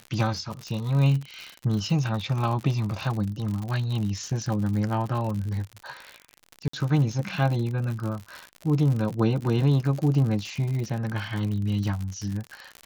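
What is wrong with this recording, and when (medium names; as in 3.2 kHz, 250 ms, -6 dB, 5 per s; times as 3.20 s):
crackle 80 per s -30 dBFS
6.68–6.73 s: dropout 54 ms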